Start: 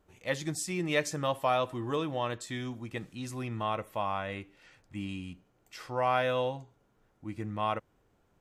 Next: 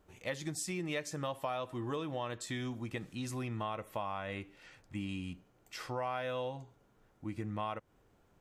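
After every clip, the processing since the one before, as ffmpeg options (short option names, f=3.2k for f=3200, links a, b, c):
-af "acompressor=threshold=-37dB:ratio=4,volume=1.5dB"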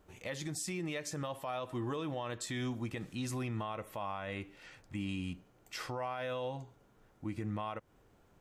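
-af "alimiter=level_in=8dB:limit=-24dB:level=0:latency=1:release=51,volume=-8dB,volume=2.5dB"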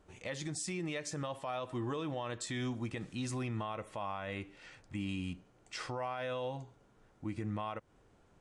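-af "aresample=22050,aresample=44100"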